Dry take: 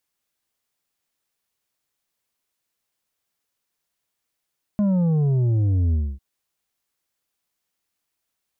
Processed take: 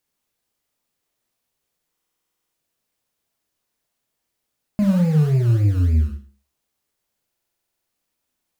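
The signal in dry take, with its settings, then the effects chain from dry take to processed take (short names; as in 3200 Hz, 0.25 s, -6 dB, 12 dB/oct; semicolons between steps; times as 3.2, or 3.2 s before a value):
sub drop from 210 Hz, over 1.40 s, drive 6.5 dB, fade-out 0.26 s, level -17.5 dB
in parallel at -11 dB: decimation with a swept rate 26×, swing 60% 3.5 Hz; on the sum: Schroeder reverb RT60 0.38 s, combs from 26 ms, DRR 5 dB; stuck buffer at 1.92/7.28, samples 2048, times 12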